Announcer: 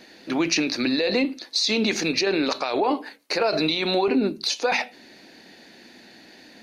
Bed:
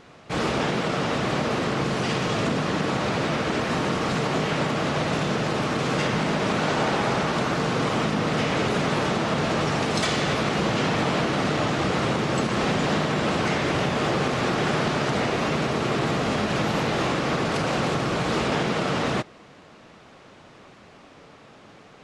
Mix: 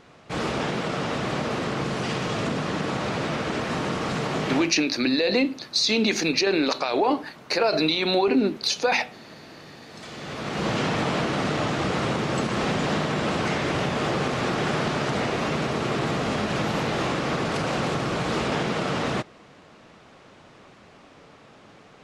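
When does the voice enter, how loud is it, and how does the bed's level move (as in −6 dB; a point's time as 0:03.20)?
4.20 s, +0.5 dB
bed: 0:04.56 −2.5 dB
0:04.77 −23 dB
0:09.83 −23 dB
0:10.68 −1.5 dB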